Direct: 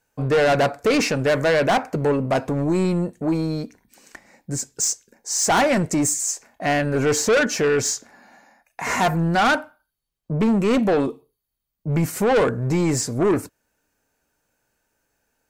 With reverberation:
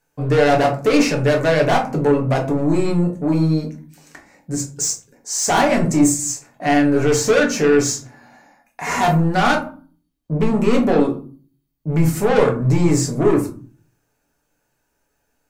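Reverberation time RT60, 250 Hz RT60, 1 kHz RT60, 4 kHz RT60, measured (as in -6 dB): 0.40 s, 0.60 s, 0.40 s, 0.20 s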